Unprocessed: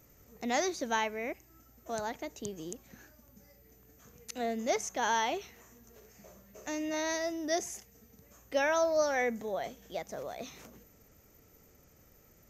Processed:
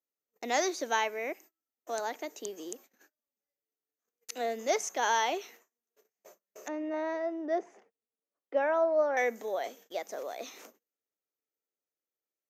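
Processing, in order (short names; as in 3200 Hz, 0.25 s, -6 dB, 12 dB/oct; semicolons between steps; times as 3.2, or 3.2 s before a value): HPF 300 Hz 24 dB/oct; gate -54 dBFS, range -36 dB; 6.68–9.17 LPF 1300 Hz 12 dB/oct; gain +2 dB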